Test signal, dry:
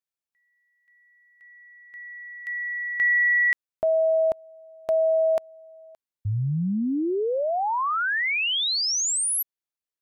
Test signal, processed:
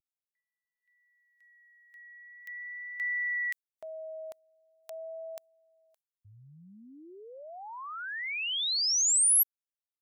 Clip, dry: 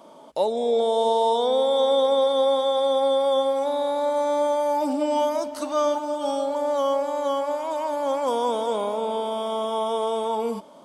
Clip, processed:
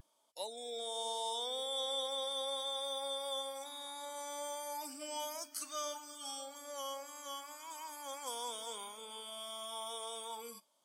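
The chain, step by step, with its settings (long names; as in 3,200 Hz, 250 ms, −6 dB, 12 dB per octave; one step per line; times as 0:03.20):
first-order pre-emphasis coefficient 0.97
pitch vibrato 0.42 Hz 20 cents
noise reduction from a noise print of the clip's start 12 dB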